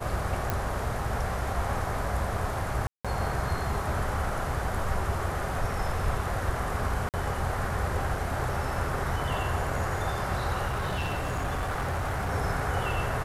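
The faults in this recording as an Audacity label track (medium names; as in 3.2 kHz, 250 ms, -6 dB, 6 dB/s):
0.500000	0.500000	pop
2.870000	3.050000	dropout 176 ms
7.090000	7.140000	dropout 48 ms
10.670000	12.330000	clipped -26 dBFS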